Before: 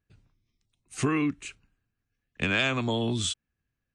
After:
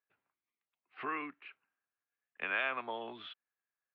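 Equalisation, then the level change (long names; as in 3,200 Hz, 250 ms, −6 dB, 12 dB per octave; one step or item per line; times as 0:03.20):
Gaussian smoothing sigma 3.9 samples
high-pass filter 900 Hz 12 dB per octave
high-frequency loss of the air 60 metres
0.0 dB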